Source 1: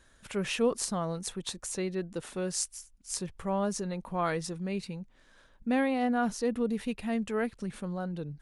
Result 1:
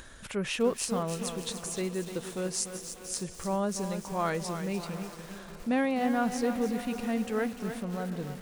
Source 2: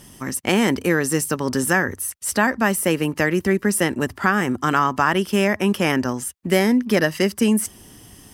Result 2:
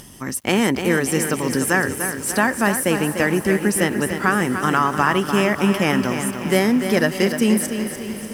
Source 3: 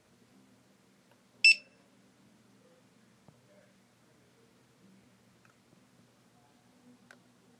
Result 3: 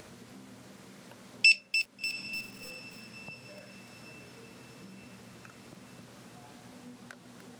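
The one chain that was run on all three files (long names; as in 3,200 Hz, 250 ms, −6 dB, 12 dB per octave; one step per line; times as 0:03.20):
upward compression, threshold −38 dBFS
on a send: feedback delay with all-pass diffusion 734 ms, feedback 52%, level −15 dB
on the sum: feedback echo at a low word length 296 ms, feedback 55%, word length 7 bits, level −8 dB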